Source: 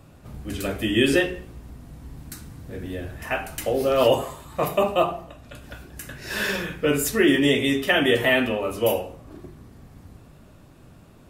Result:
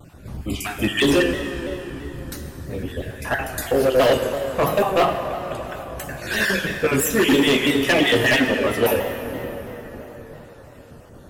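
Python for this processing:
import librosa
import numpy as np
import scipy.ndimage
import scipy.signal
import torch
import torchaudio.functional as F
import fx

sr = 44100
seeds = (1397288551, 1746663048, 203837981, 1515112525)

y = fx.spec_dropout(x, sr, seeds[0], share_pct=30)
y = np.clip(y, -10.0 ** (-19.0 / 20.0), 10.0 ** (-19.0 / 20.0))
y = fx.rev_plate(y, sr, seeds[1], rt60_s=4.9, hf_ratio=0.6, predelay_ms=0, drr_db=5.5)
y = fx.vibrato_shape(y, sr, shape='saw_down', rate_hz=3.0, depth_cents=100.0)
y = F.gain(torch.from_numpy(y), 5.5).numpy()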